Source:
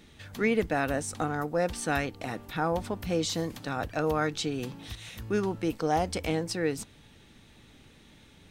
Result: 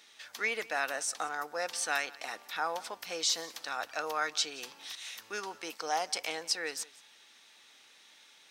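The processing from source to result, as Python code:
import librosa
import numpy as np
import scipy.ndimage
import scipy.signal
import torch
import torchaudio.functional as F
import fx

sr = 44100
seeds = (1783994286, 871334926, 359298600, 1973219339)

y = scipy.signal.sosfilt(scipy.signal.butter(2, 880.0, 'highpass', fs=sr, output='sos'), x)
y = fx.peak_eq(y, sr, hz=5400.0, db=6.5, octaves=0.73)
y = y + 10.0 ** (-21.0 / 20.0) * np.pad(y, (int(177 * sr / 1000.0), 0))[:len(y)]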